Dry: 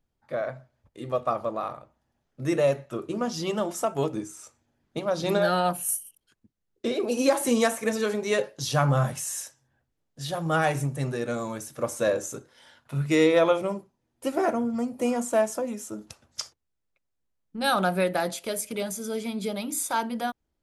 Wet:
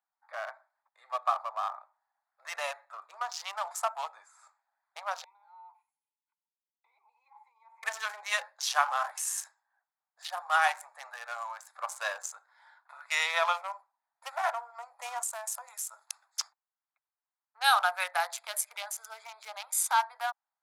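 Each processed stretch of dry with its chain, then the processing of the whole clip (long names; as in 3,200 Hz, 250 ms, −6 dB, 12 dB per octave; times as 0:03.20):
0:05.24–0:07.83: comb filter 2 ms, depth 51% + downward compressor 8 to 1, threshold −34 dBFS + formant filter u
0:15.23–0:16.40: RIAA equalisation recording + downward compressor 4 to 1, threshold −31 dBFS
whole clip: adaptive Wiener filter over 15 samples; Butterworth high-pass 770 Hz 48 dB per octave; level +2.5 dB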